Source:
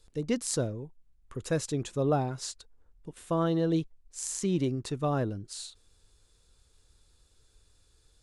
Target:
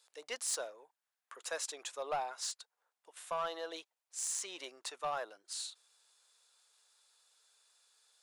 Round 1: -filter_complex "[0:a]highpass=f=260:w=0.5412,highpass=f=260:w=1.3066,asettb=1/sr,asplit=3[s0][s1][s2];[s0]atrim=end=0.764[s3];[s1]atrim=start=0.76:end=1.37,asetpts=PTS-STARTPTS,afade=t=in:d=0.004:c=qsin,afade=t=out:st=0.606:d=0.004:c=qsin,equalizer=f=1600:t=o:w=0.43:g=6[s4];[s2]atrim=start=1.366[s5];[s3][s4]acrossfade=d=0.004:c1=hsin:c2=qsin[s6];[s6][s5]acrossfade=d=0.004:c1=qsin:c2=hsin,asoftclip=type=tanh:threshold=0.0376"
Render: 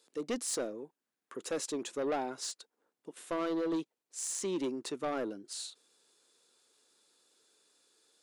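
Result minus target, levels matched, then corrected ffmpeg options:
250 Hz band +19.5 dB
-filter_complex "[0:a]highpass=f=680:w=0.5412,highpass=f=680:w=1.3066,asettb=1/sr,asplit=3[s0][s1][s2];[s0]atrim=end=0.764[s3];[s1]atrim=start=0.76:end=1.37,asetpts=PTS-STARTPTS,afade=t=in:d=0.004:c=qsin,afade=t=out:st=0.606:d=0.004:c=qsin,equalizer=f=1600:t=o:w=0.43:g=6[s4];[s2]atrim=start=1.366[s5];[s3][s4]acrossfade=d=0.004:c1=hsin:c2=qsin[s6];[s6][s5]acrossfade=d=0.004:c1=qsin:c2=hsin,asoftclip=type=tanh:threshold=0.0376"

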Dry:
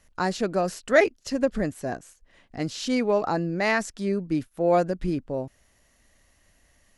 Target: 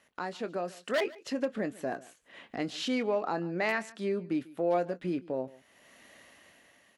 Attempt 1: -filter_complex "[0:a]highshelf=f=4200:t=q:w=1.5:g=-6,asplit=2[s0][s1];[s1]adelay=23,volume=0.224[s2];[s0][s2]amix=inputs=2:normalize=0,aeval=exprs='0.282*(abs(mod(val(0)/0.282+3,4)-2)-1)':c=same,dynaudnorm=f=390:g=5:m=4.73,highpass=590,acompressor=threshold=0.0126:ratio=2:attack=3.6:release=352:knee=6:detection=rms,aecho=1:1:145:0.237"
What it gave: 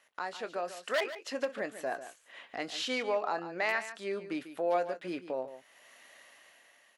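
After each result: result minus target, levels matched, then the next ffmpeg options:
250 Hz band -6.0 dB; echo-to-direct +8.5 dB
-filter_complex "[0:a]highshelf=f=4200:t=q:w=1.5:g=-6,asplit=2[s0][s1];[s1]adelay=23,volume=0.224[s2];[s0][s2]amix=inputs=2:normalize=0,aeval=exprs='0.282*(abs(mod(val(0)/0.282+3,4)-2)-1)':c=same,dynaudnorm=f=390:g=5:m=4.73,highpass=230,acompressor=threshold=0.0126:ratio=2:attack=3.6:release=352:knee=6:detection=rms,aecho=1:1:145:0.237"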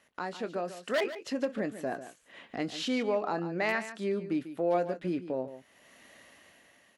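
echo-to-direct +8.5 dB
-filter_complex "[0:a]highshelf=f=4200:t=q:w=1.5:g=-6,asplit=2[s0][s1];[s1]adelay=23,volume=0.224[s2];[s0][s2]amix=inputs=2:normalize=0,aeval=exprs='0.282*(abs(mod(val(0)/0.282+3,4)-2)-1)':c=same,dynaudnorm=f=390:g=5:m=4.73,highpass=230,acompressor=threshold=0.0126:ratio=2:attack=3.6:release=352:knee=6:detection=rms,aecho=1:1:145:0.0891"

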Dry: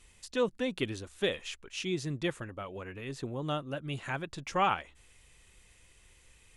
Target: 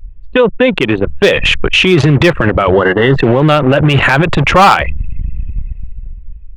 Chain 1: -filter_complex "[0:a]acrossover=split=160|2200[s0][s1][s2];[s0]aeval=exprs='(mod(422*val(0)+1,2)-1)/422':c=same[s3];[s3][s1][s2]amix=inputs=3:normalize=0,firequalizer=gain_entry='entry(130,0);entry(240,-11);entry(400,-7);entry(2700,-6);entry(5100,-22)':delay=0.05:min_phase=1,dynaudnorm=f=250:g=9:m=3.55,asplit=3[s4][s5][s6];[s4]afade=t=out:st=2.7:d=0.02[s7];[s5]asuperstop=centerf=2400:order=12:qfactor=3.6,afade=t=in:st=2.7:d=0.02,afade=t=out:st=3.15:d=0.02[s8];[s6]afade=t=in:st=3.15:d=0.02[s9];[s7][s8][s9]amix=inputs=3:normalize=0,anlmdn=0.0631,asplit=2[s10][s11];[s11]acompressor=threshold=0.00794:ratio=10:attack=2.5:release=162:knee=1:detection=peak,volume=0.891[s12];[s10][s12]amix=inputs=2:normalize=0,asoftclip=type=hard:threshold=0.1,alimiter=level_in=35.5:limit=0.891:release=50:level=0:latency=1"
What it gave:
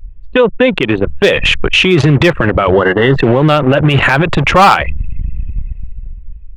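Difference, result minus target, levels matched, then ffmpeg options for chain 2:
compression: peak gain reduction +7.5 dB
-filter_complex "[0:a]acrossover=split=160|2200[s0][s1][s2];[s0]aeval=exprs='(mod(422*val(0)+1,2)-1)/422':c=same[s3];[s3][s1][s2]amix=inputs=3:normalize=0,firequalizer=gain_entry='entry(130,0);entry(240,-11);entry(400,-7);entry(2700,-6);entry(5100,-22)':delay=0.05:min_phase=1,dynaudnorm=f=250:g=9:m=3.55,asplit=3[s4][s5][s6];[s4]afade=t=out:st=2.7:d=0.02[s7];[s5]asuperstop=centerf=2400:order=12:qfactor=3.6,afade=t=in:st=2.7:d=0.02,afade=t=out:st=3.15:d=0.02[s8];[s6]afade=t=in:st=3.15:d=0.02[s9];[s7][s8][s9]amix=inputs=3:normalize=0,anlmdn=0.0631,asplit=2[s10][s11];[s11]acompressor=threshold=0.0211:ratio=10:attack=2.5:release=162:knee=1:detection=peak,volume=0.891[s12];[s10][s12]amix=inputs=2:normalize=0,asoftclip=type=hard:threshold=0.1,alimiter=level_in=35.5:limit=0.891:release=50:level=0:latency=1"

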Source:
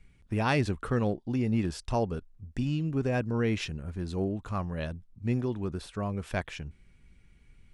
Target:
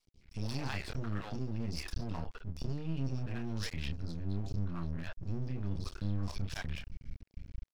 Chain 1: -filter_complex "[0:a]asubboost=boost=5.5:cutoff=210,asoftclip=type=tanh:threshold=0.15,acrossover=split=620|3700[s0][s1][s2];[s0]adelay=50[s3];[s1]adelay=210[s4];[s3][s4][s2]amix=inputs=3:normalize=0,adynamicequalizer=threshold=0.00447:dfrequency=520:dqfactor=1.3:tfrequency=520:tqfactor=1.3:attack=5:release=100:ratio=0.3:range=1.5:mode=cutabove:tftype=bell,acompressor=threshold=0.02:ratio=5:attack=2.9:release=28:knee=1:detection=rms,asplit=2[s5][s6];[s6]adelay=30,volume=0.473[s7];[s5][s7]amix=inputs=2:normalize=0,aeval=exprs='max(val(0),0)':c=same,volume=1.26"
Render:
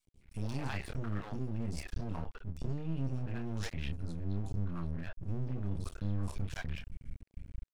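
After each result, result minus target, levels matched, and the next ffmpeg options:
saturation: distortion +14 dB; 4 kHz band -5.0 dB
-filter_complex "[0:a]asubboost=boost=5.5:cutoff=210,asoftclip=type=tanh:threshold=0.422,acrossover=split=620|3700[s0][s1][s2];[s0]adelay=50[s3];[s1]adelay=210[s4];[s3][s4][s2]amix=inputs=3:normalize=0,adynamicequalizer=threshold=0.00447:dfrequency=520:dqfactor=1.3:tfrequency=520:tqfactor=1.3:attack=5:release=100:ratio=0.3:range=1.5:mode=cutabove:tftype=bell,acompressor=threshold=0.02:ratio=5:attack=2.9:release=28:knee=1:detection=rms,asplit=2[s5][s6];[s6]adelay=30,volume=0.473[s7];[s5][s7]amix=inputs=2:normalize=0,aeval=exprs='max(val(0),0)':c=same,volume=1.26"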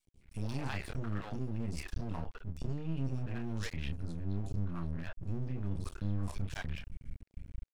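4 kHz band -4.5 dB
-filter_complex "[0:a]asubboost=boost=5.5:cutoff=210,asoftclip=type=tanh:threshold=0.422,acrossover=split=620|3700[s0][s1][s2];[s0]adelay=50[s3];[s1]adelay=210[s4];[s3][s4][s2]amix=inputs=3:normalize=0,adynamicequalizer=threshold=0.00447:dfrequency=520:dqfactor=1.3:tfrequency=520:tqfactor=1.3:attack=5:release=100:ratio=0.3:range=1.5:mode=cutabove:tftype=bell,lowpass=f=5100:t=q:w=3.5,acompressor=threshold=0.02:ratio=5:attack=2.9:release=28:knee=1:detection=rms,asplit=2[s5][s6];[s6]adelay=30,volume=0.473[s7];[s5][s7]amix=inputs=2:normalize=0,aeval=exprs='max(val(0),0)':c=same,volume=1.26"

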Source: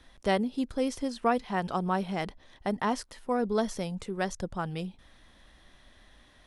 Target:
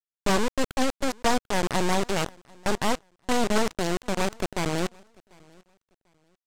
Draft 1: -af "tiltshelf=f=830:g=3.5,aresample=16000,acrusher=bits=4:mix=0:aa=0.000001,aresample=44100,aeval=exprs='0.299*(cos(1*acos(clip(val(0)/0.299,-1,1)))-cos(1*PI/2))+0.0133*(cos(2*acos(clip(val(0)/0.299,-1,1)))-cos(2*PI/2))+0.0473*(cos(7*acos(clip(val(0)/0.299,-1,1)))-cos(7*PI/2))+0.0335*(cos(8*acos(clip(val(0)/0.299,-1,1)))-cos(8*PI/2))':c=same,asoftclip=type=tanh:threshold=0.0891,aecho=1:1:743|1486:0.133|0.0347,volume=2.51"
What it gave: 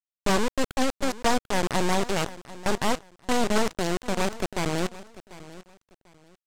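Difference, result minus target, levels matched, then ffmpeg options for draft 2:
echo-to-direct +9.5 dB
-af "tiltshelf=f=830:g=3.5,aresample=16000,acrusher=bits=4:mix=0:aa=0.000001,aresample=44100,aeval=exprs='0.299*(cos(1*acos(clip(val(0)/0.299,-1,1)))-cos(1*PI/2))+0.0133*(cos(2*acos(clip(val(0)/0.299,-1,1)))-cos(2*PI/2))+0.0473*(cos(7*acos(clip(val(0)/0.299,-1,1)))-cos(7*PI/2))+0.0335*(cos(8*acos(clip(val(0)/0.299,-1,1)))-cos(8*PI/2))':c=same,asoftclip=type=tanh:threshold=0.0891,aecho=1:1:743|1486:0.0447|0.0116,volume=2.51"

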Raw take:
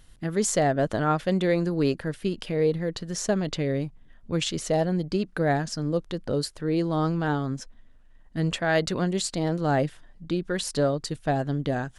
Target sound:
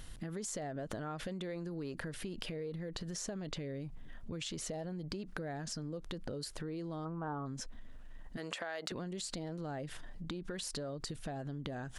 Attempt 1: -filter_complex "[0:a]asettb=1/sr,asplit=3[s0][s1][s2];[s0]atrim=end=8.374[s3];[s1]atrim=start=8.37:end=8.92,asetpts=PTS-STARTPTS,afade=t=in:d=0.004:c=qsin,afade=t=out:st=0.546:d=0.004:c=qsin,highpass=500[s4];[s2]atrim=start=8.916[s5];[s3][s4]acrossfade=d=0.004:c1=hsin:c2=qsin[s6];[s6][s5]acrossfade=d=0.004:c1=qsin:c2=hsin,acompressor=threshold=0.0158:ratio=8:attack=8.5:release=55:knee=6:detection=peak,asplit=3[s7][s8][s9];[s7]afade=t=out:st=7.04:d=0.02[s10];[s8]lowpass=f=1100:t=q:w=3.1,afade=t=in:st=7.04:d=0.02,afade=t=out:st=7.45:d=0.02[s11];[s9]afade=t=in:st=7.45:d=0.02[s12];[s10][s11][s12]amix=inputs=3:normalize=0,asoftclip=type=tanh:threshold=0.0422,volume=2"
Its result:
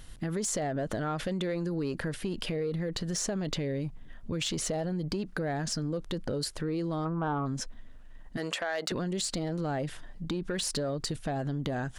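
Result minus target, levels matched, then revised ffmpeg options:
compression: peak gain reduction -10 dB
-filter_complex "[0:a]asettb=1/sr,asplit=3[s0][s1][s2];[s0]atrim=end=8.374[s3];[s1]atrim=start=8.37:end=8.92,asetpts=PTS-STARTPTS,afade=t=in:d=0.004:c=qsin,afade=t=out:st=0.546:d=0.004:c=qsin,highpass=500[s4];[s2]atrim=start=8.916[s5];[s3][s4]acrossfade=d=0.004:c1=hsin:c2=qsin[s6];[s6][s5]acrossfade=d=0.004:c1=qsin:c2=hsin,acompressor=threshold=0.00422:ratio=8:attack=8.5:release=55:knee=6:detection=peak,asplit=3[s7][s8][s9];[s7]afade=t=out:st=7.04:d=0.02[s10];[s8]lowpass=f=1100:t=q:w=3.1,afade=t=in:st=7.04:d=0.02,afade=t=out:st=7.45:d=0.02[s11];[s9]afade=t=in:st=7.45:d=0.02[s12];[s10][s11][s12]amix=inputs=3:normalize=0,asoftclip=type=tanh:threshold=0.0422,volume=2"

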